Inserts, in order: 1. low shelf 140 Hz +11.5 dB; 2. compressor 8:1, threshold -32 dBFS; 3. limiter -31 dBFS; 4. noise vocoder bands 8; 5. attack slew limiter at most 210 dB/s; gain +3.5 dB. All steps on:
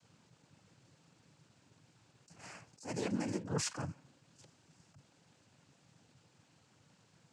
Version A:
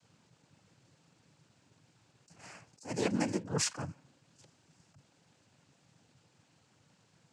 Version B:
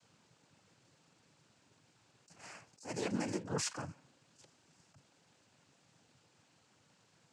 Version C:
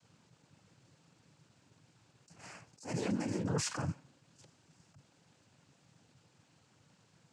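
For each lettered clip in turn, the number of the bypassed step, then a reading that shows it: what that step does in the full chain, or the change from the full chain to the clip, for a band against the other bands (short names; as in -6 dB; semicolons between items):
3, crest factor change +2.0 dB; 1, 125 Hz band -3.5 dB; 2, mean gain reduction 12.0 dB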